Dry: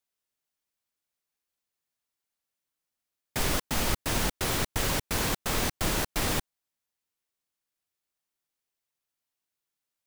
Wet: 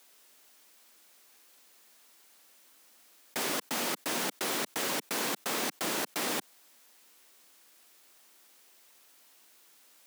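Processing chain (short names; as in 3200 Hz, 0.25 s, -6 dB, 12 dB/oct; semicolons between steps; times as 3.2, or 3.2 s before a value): HPF 220 Hz 24 dB/oct; fast leveller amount 50%; gain -3 dB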